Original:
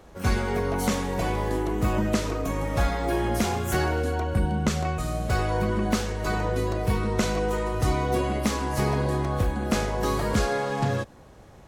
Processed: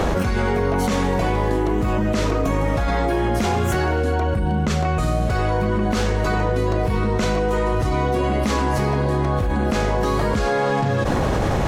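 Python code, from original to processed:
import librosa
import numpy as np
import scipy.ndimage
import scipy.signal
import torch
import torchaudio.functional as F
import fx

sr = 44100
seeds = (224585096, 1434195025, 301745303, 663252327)

y = fx.high_shelf(x, sr, hz=6900.0, db=-10.5)
y = fx.env_flatten(y, sr, amount_pct=100)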